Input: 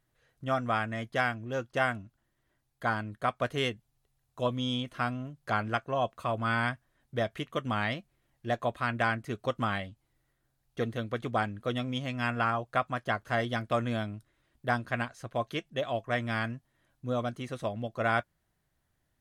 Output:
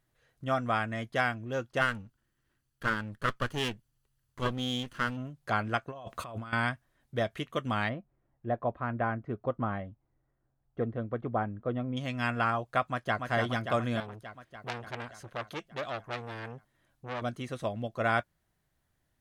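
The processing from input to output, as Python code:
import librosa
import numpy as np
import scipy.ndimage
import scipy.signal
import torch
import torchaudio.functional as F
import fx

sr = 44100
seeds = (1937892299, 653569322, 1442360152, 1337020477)

y = fx.lower_of_two(x, sr, delay_ms=0.66, at=(1.8, 5.16), fade=0.02)
y = fx.over_compress(y, sr, threshold_db=-41.0, ratio=-1.0, at=(5.88, 6.53))
y = fx.lowpass(y, sr, hz=1100.0, slope=12, at=(7.88, 11.96), fade=0.02)
y = fx.echo_throw(y, sr, start_s=12.85, length_s=0.43, ms=290, feedback_pct=70, wet_db=-4.5)
y = fx.transformer_sat(y, sr, knee_hz=3900.0, at=(14.0, 17.22))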